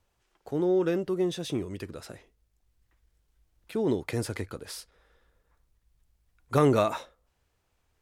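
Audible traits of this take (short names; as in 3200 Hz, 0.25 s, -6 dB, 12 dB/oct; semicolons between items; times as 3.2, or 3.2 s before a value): noise floor -75 dBFS; spectral tilt -6.0 dB/oct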